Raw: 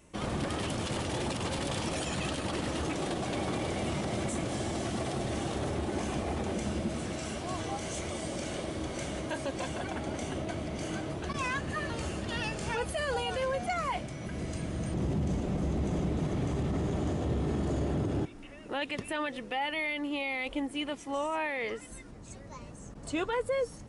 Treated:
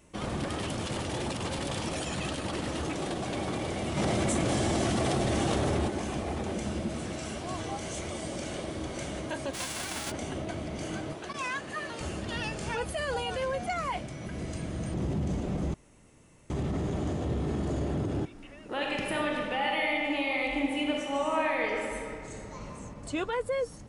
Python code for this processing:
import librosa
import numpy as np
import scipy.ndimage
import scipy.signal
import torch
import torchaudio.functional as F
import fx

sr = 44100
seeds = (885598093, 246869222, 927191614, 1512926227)

y = fx.env_flatten(x, sr, amount_pct=100, at=(3.96, 5.87), fade=0.02)
y = fx.envelope_flatten(y, sr, power=0.3, at=(9.53, 10.1), fade=0.02)
y = fx.highpass(y, sr, hz=400.0, slope=6, at=(11.13, 12.01))
y = fx.reverb_throw(y, sr, start_s=18.67, length_s=4.09, rt60_s=2.3, drr_db=-2.0)
y = fx.edit(y, sr, fx.room_tone_fill(start_s=15.74, length_s=0.76), tone=tone)